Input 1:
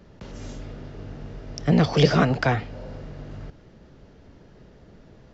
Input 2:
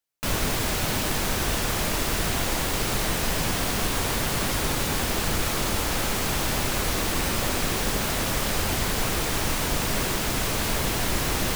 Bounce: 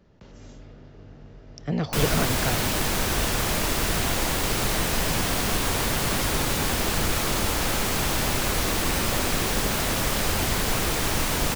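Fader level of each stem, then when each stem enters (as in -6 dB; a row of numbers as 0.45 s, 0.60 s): -8.0 dB, +1.0 dB; 0.00 s, 1.70 s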